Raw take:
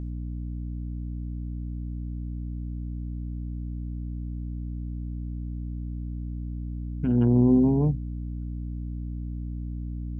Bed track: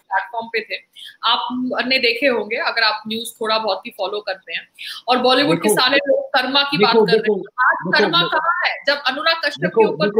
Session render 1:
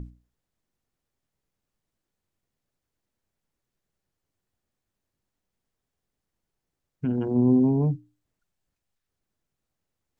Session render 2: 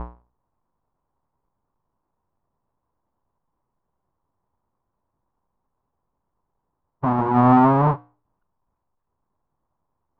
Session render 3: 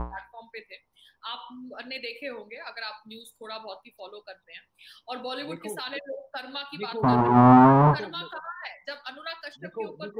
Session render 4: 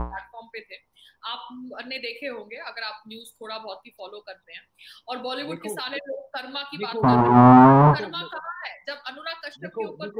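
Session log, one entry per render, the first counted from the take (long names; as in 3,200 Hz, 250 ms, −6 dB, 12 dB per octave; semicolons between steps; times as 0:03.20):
mains-hum notches 60/120/180/240/300 Hz
each half-wave held at its own peak; low-pass with resonance 1,000 Hz, resonance Q 4.9
mix in bed track −20 dB
level +3.5 dB; brickwall limiter −2 dBFS, peak gain reduction 1 dB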